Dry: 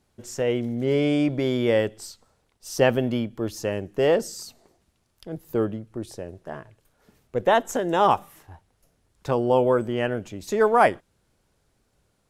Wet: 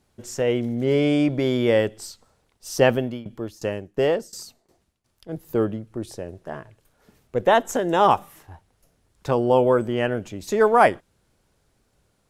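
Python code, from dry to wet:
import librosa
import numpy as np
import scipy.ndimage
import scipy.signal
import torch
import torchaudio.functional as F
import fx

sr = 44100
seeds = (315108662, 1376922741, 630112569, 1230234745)

y = fx.tremolo_shape(x, sr, shape='saw_down', hz=2.8, depth_pct=90, at=(2.9, 5.29))
y = F.gain(torch.from_numpy(y), 2.0).numpy()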